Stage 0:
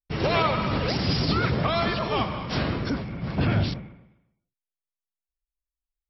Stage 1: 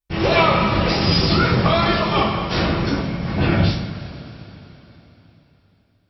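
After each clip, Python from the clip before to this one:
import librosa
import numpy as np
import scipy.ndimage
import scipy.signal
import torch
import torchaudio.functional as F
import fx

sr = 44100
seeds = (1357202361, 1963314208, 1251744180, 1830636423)

y = fx.rev_double_slope(x, sr, seeds[0], early_s=0.4, late_s=3.7, knee_db=-18, drr_db=-4.5)
y = F.gain(torch.from_numpy(y), 2.0).numpy()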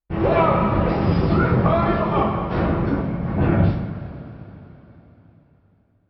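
y = scipy.signal.sosfilt(scipy.signal.butter(2, 1300.0, 'lowpass', fs=sr, output='sos'), x)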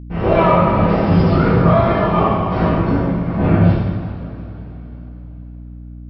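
y = fx.rev_double_slope(x, sr, seeds[1], early_s=0.87, late_s=2.9, knee_db=-18, drr_db=-4.5)
y = fx.add_hum(y, sr, base_hz=60, snr_db=17)
y = F.gain(torch.from_numpy(y), -1.5).numpy()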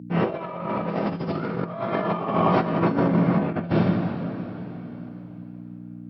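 y = scipy.signal.sosfilt(scipy.signal.butter(4, 150.0, 'highpass', fs=sr, output='sos'), x)
y = fx.over_compress(y, sr, threshold_db=-20.0, ratio=-0.5)
y = F.gain(torch.from_numpy(y), -2.5).numpy()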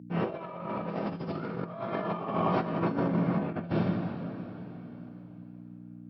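y = fx.notch(x, sr, hz=2000.0, q=17.0)
y = F.gain(torch.from_numpy(y), -7.5).numpy()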